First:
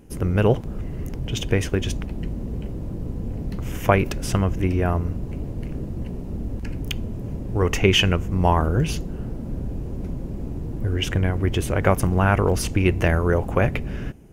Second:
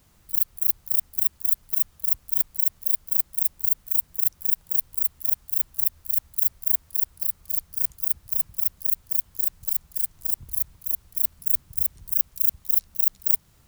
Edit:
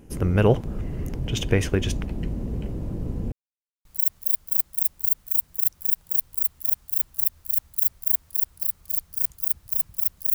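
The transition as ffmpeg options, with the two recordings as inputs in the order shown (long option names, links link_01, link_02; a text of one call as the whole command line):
ffmpeg -i cue0.wav -i cue1.wav -filter_complex "[0:a]apad=whole_dur=10.34,atrim=end=10.34,asplit=2[link_01][link_02];[link_01]atrim=end=3.32,asetpts=PTS-STARTPTS,afade=type=out:start_time=3.316:duration=0.004:curve=hsin[link_03];[link_02]atrim=start=3.32:end=3.85,asetpts=PTS-STARTPTS,volume=0[link_04];[1:a]atrim=start=2.45:end=8.94,asetpts=PTS-STARTPTS,afade=type=in:duration=0.004:curve=hsin[link_05];[link_03][link_04][link_05]concat=n=3:v=0:a=1" out.wav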